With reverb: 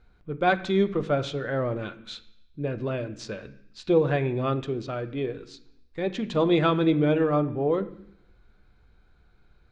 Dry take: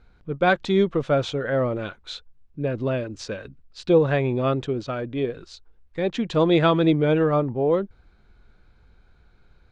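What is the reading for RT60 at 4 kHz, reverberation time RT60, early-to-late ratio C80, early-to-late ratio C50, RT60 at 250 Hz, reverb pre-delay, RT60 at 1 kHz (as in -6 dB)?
0.95 s, 0.70 s, 17.5 dB, 15.0 dB, 0.90 s, 3 ms, 0.70 s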